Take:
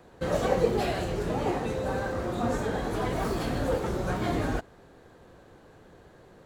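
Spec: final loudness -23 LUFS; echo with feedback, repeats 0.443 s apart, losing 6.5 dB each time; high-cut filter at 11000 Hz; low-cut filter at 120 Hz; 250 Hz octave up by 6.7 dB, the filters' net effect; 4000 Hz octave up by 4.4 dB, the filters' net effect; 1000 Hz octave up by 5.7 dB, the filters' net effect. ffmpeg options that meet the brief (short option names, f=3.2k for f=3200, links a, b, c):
-af "highpass=120,lowpass=11k,equalizer=f=250:t=o:g=8.5,equalizer=f=1k:t=o:g=7,equalizer=f=4k:t=o:g=5,aecho=1:1:443|886|1329|1772|2215|2658:0.473|0.222|0.105|0.0491|0.0231|0.0109,volume=1.5dB"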